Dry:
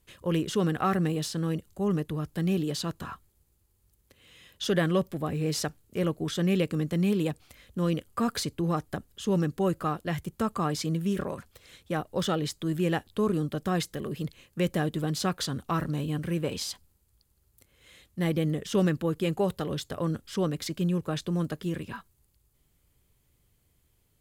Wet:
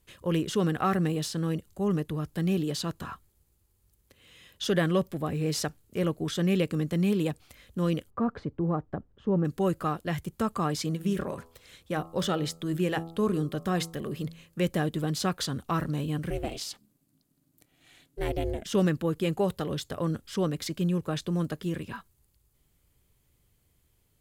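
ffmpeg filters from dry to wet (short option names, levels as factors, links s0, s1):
-filter_complex "[0:a]asplit=3[s0][s1][s2];[s0]afade=t=out:st=8.09:d=0.02[s3];[s1]lowpass=1100,afade=t=in:st=8.09:d=0.02,afade=t=out:st=9.44:d=0.02[s4];[s2]afade=t=in:st=9.44:d=0.02[s5];[s3][s4][s5]amix=inputs=3:normalize=0,asplit=3[s6][s7][s8];[s6]afade=t=out:st=10.87:d=0.02[s9];[s7]bandreject=f=82.55:t=h:w=4,bandreject=f=165.1:t=h:w=4,bandreject=f=247.65:t=h:w=4,bandreject=f=330.2:t=h:w=4,bandreject=f=412.75:t=h:w=4,bandreject=f=495.3:t=h:w=4,bandreject=f=577.85:t=h:w=4,bandreject=f=660.4:t=h:w=4,bandreject=f=742.95:t=h:w=4,bandreject=f=825.5:t=h:w=4,bandreject=f=908.05:t=h:w=4,bandreject=f=990.6:t=h:w=4,bandreject=f=1073.15:t=h:w=4,bandreject=f=1155.7:t=h:w=4,bandreject=f=1238.25:t=h:w=4,bandreject=f=1320.8:t=h:w=4,afade=t=in:st=10.87:d=0.02,afade=t=out:st=14.65:d=0.02[s10];[s8]afade=t=in:st=14.65:d=0.02[s11];[s9][s10][s11]amix=inputs=3:normalize=0,asettb=1/sr,asplit=3[s12][s13][s14];[s12]atrim=end=16.304[s15];[s13]atrim=start=16.3:end=18.66,asetpts=PTS-STARTPTS,afade=t=in:d=0.004:c=qsin,afade=t=out:st=2.356:d=0.004:c=qsin,aeval=exprs='val(0)*sin(2*PI*210*n/s)':c=same[s16];[s14]atrim=start=18.656[s17];[s15][s16]acrossfade=d=0.004:c1=hsin:c2=qsin[s18];[s18][s17]acrossfade=d=0.004:c1=qsin:c2=hsin"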